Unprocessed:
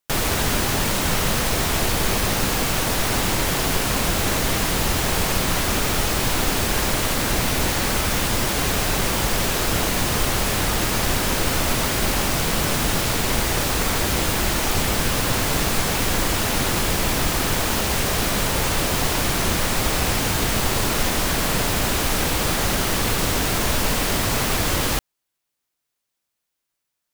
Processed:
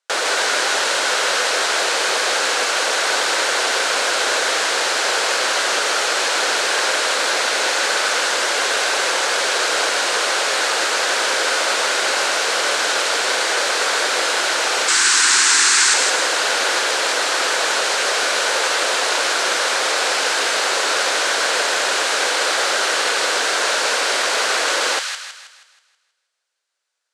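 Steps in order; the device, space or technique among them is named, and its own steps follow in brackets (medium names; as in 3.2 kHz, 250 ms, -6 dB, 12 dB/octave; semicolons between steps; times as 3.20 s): 14.88–15.94 s: FFT filter 360 Hz 0 dB, 550 Hz -21 dB, 910 Hz -1 dB, 1.8 kHz +5 dB, 3.2 kHz +2 dB, 8.1 kHz +13 dB, 13 kHz -5 dB; phone speaker on a table (cabinet simulation 430–8500 Hz, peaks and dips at 520 Hz +4 dB, 1.5 kHz +7 dB, 4.2 kHz +3 dB); feedback echo behind a high-pass 160 ms, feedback 44%, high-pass 1.5 kHz, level -3.5 dB; trim +3 dB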